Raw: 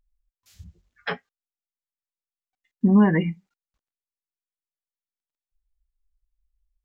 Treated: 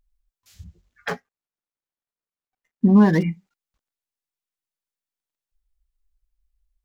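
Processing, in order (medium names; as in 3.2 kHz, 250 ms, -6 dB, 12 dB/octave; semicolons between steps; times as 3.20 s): 1.08–3.23 s: median filter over 15 samples; trim +2.5 dB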